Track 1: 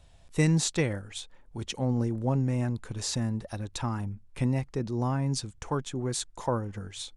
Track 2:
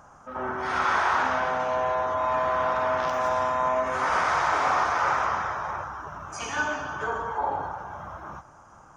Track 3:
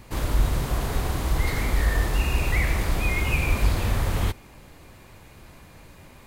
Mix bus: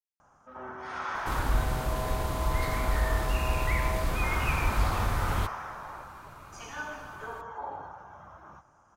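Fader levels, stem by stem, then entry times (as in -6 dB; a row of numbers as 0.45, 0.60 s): off, -10.5 dB, -5.5 dB; off, 0.20 s, 1.15 s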